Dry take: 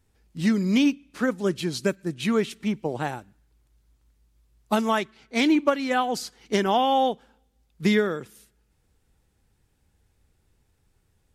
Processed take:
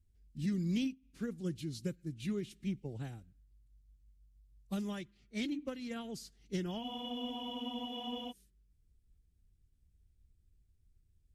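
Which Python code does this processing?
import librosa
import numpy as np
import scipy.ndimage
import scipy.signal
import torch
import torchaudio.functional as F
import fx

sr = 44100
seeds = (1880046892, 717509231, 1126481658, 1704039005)

y = fx.pitch_keep_formants(x, sr, semitones=-1.5)
y = fx.tone_stack(y, sr, knobs='10-0-1')
y = fx.spec_freeze(y, sr, seeds[0], at_s=6.85, hold_s=1.44)
y = y * 10.0 ** (6.0 / 20.0)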